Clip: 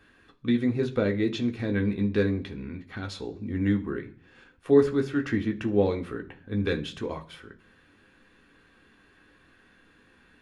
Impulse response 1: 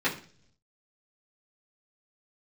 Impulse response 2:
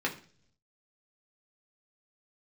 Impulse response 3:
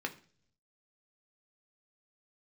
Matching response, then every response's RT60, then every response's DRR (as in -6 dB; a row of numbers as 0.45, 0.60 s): 3; 0.50, 0.50, 0.50 s; -11.0, -2.5, 3.0 dB